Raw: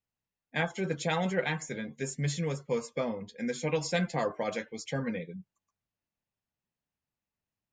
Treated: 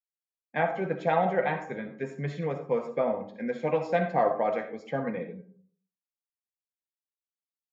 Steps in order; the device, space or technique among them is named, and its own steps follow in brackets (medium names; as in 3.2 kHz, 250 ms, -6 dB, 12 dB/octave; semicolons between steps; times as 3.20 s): high-pass 280 Hz 6 dB/octave; dynamic bell 720 Hz, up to +7 dB, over -48 dBFS, Q 3.2; hearing-loss simulation (low-pass 1.6 kHz 12 dB/octave; expander -54 dBFS); algorithmic reverb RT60 0.52 s, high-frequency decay 0.4×, pre-delay 20 ms, DRR 7.5 dB; trim +4 dB